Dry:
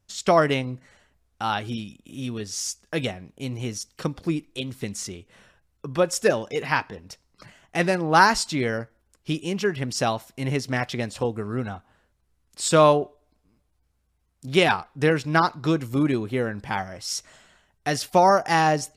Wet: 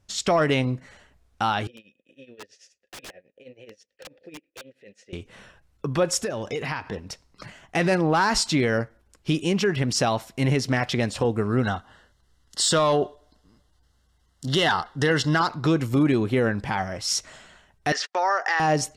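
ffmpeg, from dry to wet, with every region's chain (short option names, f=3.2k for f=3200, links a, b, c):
-filter_complex "[0:a]asettb=1/sr,asplit=3[a][b][c];[a]atrim=end=1.674[d];[b]atrim=start=1.67:end=5.13,asetpts=PTS-STARTPTS,afade=t=in:d=0.004:c=qsin,afade=t=out:st=3.456:d=0.004:c=qsin,tremolo=f=9.3:d=0.86,asplit=3[e][f][g];[e]bandpass=f=530:t=q:w=8,volume=0dB[h];[f]bandpass=f=1.84k:t=q:w=8,volume=-6dB[i];[g]bandpass=f=2.48k:t=q:w=8,volume=-9dB[j];[h][i][j]amix=inputs=3:normalize=0,aeval=exprs='(mod(94.4*val(0)+1,2)-1)/94.4':c=same[k];[c]atrim=start=5.126[l];[d][k]acrossfade=d=0.004:c1=hsin:c2=qsin[m];[m][l]acrossfade=d=0.004:c1=qsin:c2=hsin,asettb=1/sr,asplit=3[n][o][p];[n]atrim=end=6.174[q];[o]atrim=start=6.17:end=6.88,asetpts=PTS-STARTPTS,afade=t=in:d=0.004:c=qsin,afade=t=out:st=0.706:d=0.004:c=qsin,equalizer=f=87:w=2.2:g=8,acompressor=threshold=-31dB:ratio=8:attack=3.2:release=140:knee=1:detection=peak[r];[p]atrim=start=6.876[s];[q][r]acrossfade=d=0.004:c1=hsin:c2=qsin[t];[t][s]acrossfade=d=0.004:c1=qsin:c2=hsin,asettb=1/sr,asplit=3[u][v][w];[u]atrim=end=11.634[x];[v]atrim=start=11.63:end=15.48,asetpts=PTS-STARTPTS,afade=t=in:d=0.004:c=qsin,afade=t=out:st=3.846:d=0.004:c=qsin,asuperstop=centerf=2400:order=8:qfactor=3.8,equalizer=f=3.7k:t=o:w=2.9:g=8[y];[w]atrim=start=15.476[z];[x][y]acrossfade=d=0.004:c1=hsin:c2=qsin[aa];[aa][z]acrossfade=d=0.004:c1=qsin:c2=hsin,asettb=1/sr,asplit=3[ab][ac][ad];[ab]atrim=end=17.924[ae];[ac]atrim=start=17.92:end=18.6,asetpts=PTS-STARTPTS,afade=t=in:d=0.004:c=qsin,afade=t=out:st=0.676:d=0.004:c=qsin,agate=range=-43dB:threshold=-36dB:ratio=16:release=100:detection=peak,acompressor=threshold=-27dB:ratio=3:attack=3.2:release=140:knee=1:detection=peak,highpass=f=440:w=0.5412,highpass=f=440:w=1.3066,equalizer=f=630:t=q:w=4:g=-6,equalizer=f=1.3k:t=q:w=4:g=4,equalizer=f=1.8k:t=q:w=4:g=10,lowpass=f=6.4k:w=0.5412,lowpass=f=6.4k:w=1.3066[af];[ad]atrim=start=18.596[ag];[ae][af]acrossfade=d=0.004:c1=hsin:c2=qsin[ah];[ah][ag]acrossfade=d=0.004:c1=qsin:c2=hsin,highshelf=f=12k:g=-11.5,acontrast=52,alimiter=limit=-13dB:level=0:latency=1:release=60"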